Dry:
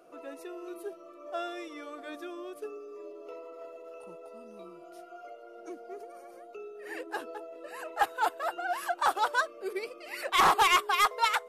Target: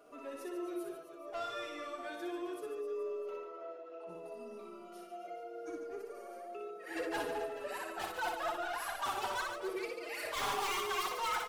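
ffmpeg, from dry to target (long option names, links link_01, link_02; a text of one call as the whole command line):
ffmpeg -i in.wav -filter_complex "[0:a]asettb=1/sr,asplit=3[link_01][link_02][link_03];[link_01]atrim=end=6.964[link_04];[link_02]atrim=start=6.96:end=7.78,asetpts=PTS-STARTPTS,afade=type=in:duration=0.004:curve=qsin,afade=type=out:start_time=0.816:duration=0.004:curve=qsin,acontrast=50[link_05];[link_03]atrim=start=7.776[link_06];[link_04][link_05]acrossfade=duration=0.004:curve1=hsin:curve2=qsin[link_07];[link_07][link_06]acrossfade=duration=0.004:curve1=qsin:curve2=hsin,asoftclip=type=tanh:threshold=-33.5dB,asettb=1/sr,asplit=3[link_08][link_09][link_10];[link_08]atrim=end=3.364[link_11];[link_09]atrim=start=3.36:end=4.09,asetpts=PTS-STARTPTS,afade=type=in:duration=0.004:curve=qsin,afade=type=out:start_time=0.726:duration=0.004:curve=qsin,highpass=260,lowpass=3400[link_12];[link_10]atrim=start=4.086[link_13];[link_11][link_12]acrossfade=duration=0.004:curve1=hsin:curve2=qsin[link_14];[link_14][link_13]acrossfade=duration=0.004:curve1=qsin:curve2=hsin,aecho=1:1:60|144|261.6|426.2|656.7:0.631|0.398|0.251|0.158|0.1,asplit=2[link_15][link_16];[link_16]adelay=4.5,afreqshift=-0.67[link_17];[link_15][link_17]amix=inputs=2:normalize=1,volume=1.5dB" out.wav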